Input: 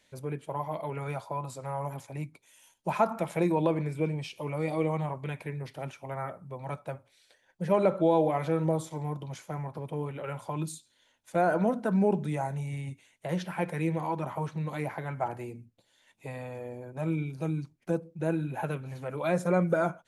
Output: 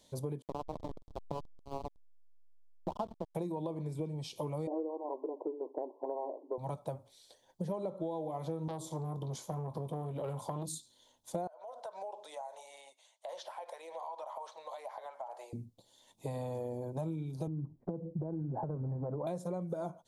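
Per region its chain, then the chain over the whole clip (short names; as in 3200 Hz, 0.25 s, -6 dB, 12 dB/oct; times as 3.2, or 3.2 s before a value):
0.42–3.35 brick-wall FIR band-pass 160–1600 Hz + backlash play -25 dBFS
4.67–6.58 brick-wall FIR band-pass 260–1100 Hz + bell 380 Hz +10 dB 1.3 oct
8.68–10.69 doubler 22 ms -12.5 dB + core saturation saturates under 1500 Hz
11.47–15.53 Chebyshev high-pass 580 Hz, order 4 + compressor 10:1, threshold -42 dBFS + air absorption 50 m
17.47–19.27 steep low-pass 1800 Hz + tilt shelf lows +8.5 dB, about 1300 Hz + compressor 12:1, threshold -28 dBFS
whole clip: band shelf 1900 Hz -14.5 dB 1.3 oct; compressor 12:1, threshold -38 dBFS; gain +4 dB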